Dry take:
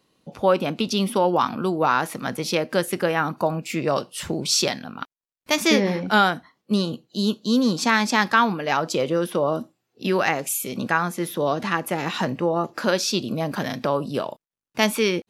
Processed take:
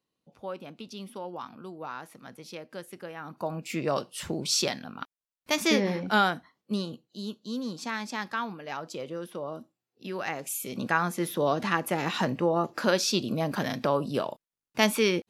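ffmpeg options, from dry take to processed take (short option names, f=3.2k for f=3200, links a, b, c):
-af "volume=5.5dB,afade=t=in:st=3.21:d=0.52:silence=0.223872,afade=t=out:st=6.33:d=0.87:silence=0.375837,afade=t=in:st=10.13:d=0.99:silence=0.281838"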